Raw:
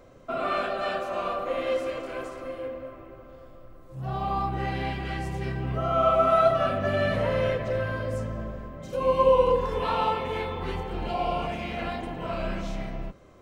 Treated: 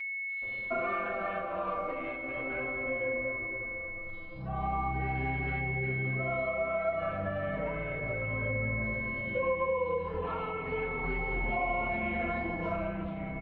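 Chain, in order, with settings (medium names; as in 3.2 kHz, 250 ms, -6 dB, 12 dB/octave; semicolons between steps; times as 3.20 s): distance through air 430 m; bands offset in time highs, lows 420 ms, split 3.9 kHz; compression 6:1, threshold -32 dBFS, peak gain reduction 14.5 dB; whistle 2.2 kHz -38 dBFS; endless flanger 5 ms -0.35 Hz; trim +4.5 dB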